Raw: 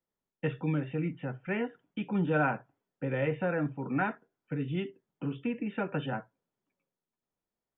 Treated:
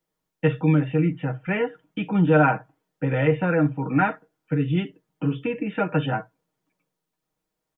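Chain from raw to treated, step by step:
comb filter 6.4 ms, depth 61%
level +7.5 dB

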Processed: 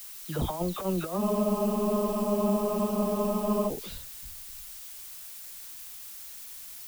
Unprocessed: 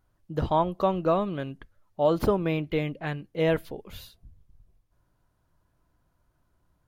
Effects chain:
every frequency bin delayed by itself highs early, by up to 220 ms
compressor whose output falls as the input rises −27 dBFS, ratio −0.5
background noise blue −42 dBFS
frozen spectrum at 0:01.21, 2.48 s
level −1.5 dB

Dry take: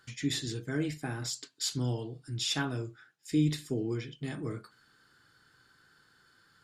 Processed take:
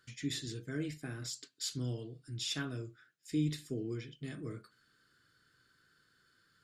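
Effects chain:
parametric band 860 Hz −13.5 dB 0.41 octaves
level −5.5 dB

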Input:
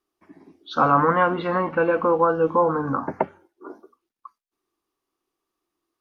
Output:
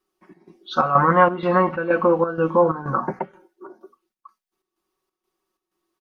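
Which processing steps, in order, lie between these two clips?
comb filter 5.4 ms, depth 78%
square-wave tremolo 2.1 Hz, depth 60%, duty 70%
level +1 dB

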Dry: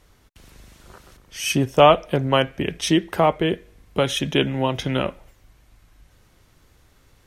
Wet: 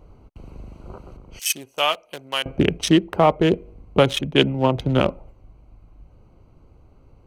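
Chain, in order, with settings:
adaptive Wiener filter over 25 samples
0:01.39–0:02.46: first difference
speech leveller within 4 dB 0.5 s
0:04.21–0:05.00: multiband upward and downward expander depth 100%
level +5.5 dB

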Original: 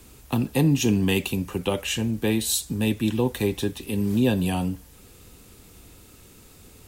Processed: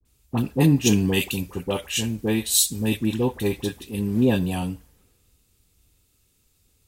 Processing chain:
all-pass dispersion highs, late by 53 ms, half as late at 980 Hz
multiband upward and downward expander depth 70%

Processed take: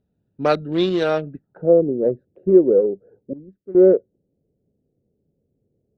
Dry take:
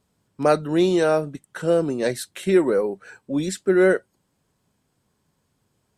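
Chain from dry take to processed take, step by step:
adaptive Wiener filter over 41 samples
0:03.33–0:03.75: guitar amp tone stack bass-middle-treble 5-5-5
low-pass filter sweep 3,700 Hz → 480 Hz, 0:01.18–0:01.75

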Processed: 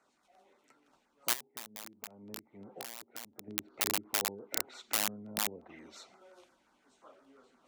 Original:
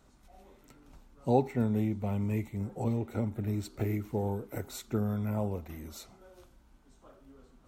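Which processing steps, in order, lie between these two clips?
low-pass filter 7,900 Hz 12 dB per octave
speech leveller within 3 dB 2 s
treble cut that deepens with the level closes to 360 Hz, closed at −27.5 dBFS
three-way crossover with the lows and the highs turned down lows −14 dB, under 180 Hz, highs −16 dB, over 2,700 Hz
auto-filter notch saw down 5.7 Hz 850–3,700 Hz
wrap-around overflow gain 28 dB
spectral tilt +4.5 dB per octave
0:01.33–0:03.48: downward compressor 6 to 1, threshold −40 dBFS, peak gain reduction 17.5 dB

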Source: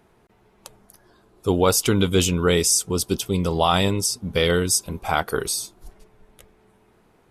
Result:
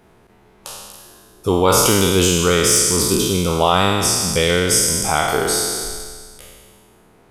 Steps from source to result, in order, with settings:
peak hold with a decay on every bin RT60 1.67 s
in parallel at −2 dB: downward compressor 10 to 1, threshold −23 dBFS, peak gain reduction 14 dB
0:01.86–0:03.10: on the sum: hard clipping −6 dBFS, distortion −27 dB
level −1 dB

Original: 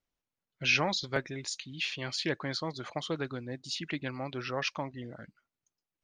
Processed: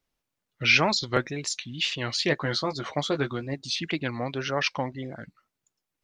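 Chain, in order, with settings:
tape wow and flutter 140 cents
0:02.29–0:03.54: double-tracking delay 14 ms −5.5 dB
level +6.5 dB

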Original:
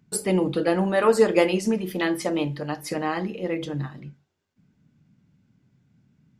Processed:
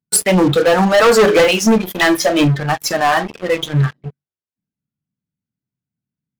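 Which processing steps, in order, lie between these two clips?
noise reduction from a noise print of the clip's start 14 dB
leveller curve on the samples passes 5
wow of a warped record 33 1/3 rpm, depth 100 cents

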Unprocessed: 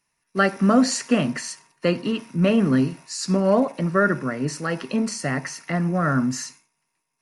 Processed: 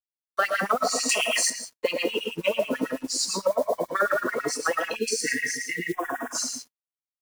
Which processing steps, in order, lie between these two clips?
in parallel at −5 dB: soft clipping −20.5 dBFS, distortion −9 dB
on the sum: noise reduction from a noise print of the clip's start 20 dB
on a send at −3 dB: convolution reverb RT60 0.55 s, pre-delay 75 ms
on the sum: auto-filter high-pass sine 9.1 Hz 400–2,900 Hz
dead-zone distortion −47.5 dBFS
0:01.09–0:01.50: spectral tilt +4 dB per octave
noise that follows the level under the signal 23 dB
0:03.37–0:04.08: parametric band 2,700 Hz −13 dB 0.34 octaves
0:04.96–0:05.95: time-frequency box erased 480–1,500 Hz
downward compressor 10 to 1, threshold −20 dBFS, peak gain reduction 11.5 dB
0:05.92–0:06.35: phaser with its sweep stopped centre 880 Hz, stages 8

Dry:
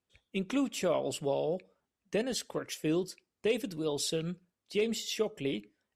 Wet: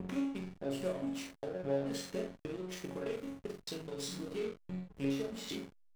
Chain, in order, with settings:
slices reordered back to front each 204 ms, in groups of 3
flutter between parallel walls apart 7.5 metres, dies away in 0.46 s
downward compressor 8 to 1, threshold −35 dBFS, peak gain reduction 11.5 dB
resonators tuned to a chord F#2 minor, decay 0.47 s
slack as between gear wheels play −52.5 dBFS
level +15 dB

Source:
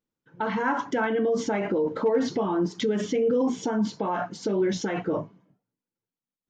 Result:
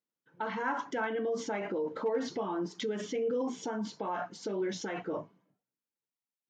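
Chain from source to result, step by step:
high-pass filter 89 Hz
low-shelf EQ 250 Hz −9 dB
level −6 dB

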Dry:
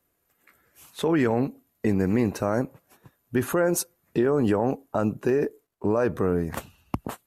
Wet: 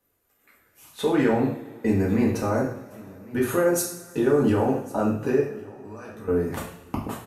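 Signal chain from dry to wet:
0:05.40–0:06.28: guitar amp tone stack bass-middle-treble 5-5-5
single-tap delay 1,102 ms −22.5 dB
convolution reverb, pre-delay 3 ms, DRR −4 dB
level −4 dB

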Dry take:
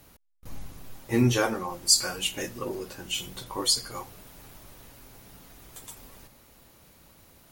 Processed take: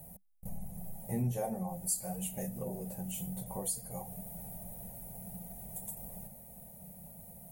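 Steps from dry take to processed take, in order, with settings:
drawn EQ curve 110 Hz 0 dB, 190 Hz +13 dB, 300 Hz −16 dB, 490 Hz −1 dB, 720 Hz +6 dB, 1,300 Hz −25 dB, 1,900 Hz −12 dB, 3,000 Hz −18 dB, 5,100 Hz −18 dB, 9,800 Hz +6 dB
downward compressor 2 to 1, threshold −41 dBFS, peak gain reduction 13 dB
level +1 dB

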